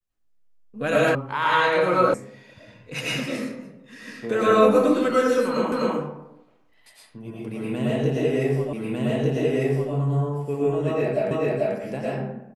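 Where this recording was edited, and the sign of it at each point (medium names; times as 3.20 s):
1.15 s: sound stops dead
2.14 s: sound stops dead
5.72 s: repeat of the last 0.25 s
8.73 s: repeat of the last 1.2 s
11.31 s: repeat of the last 0.44 s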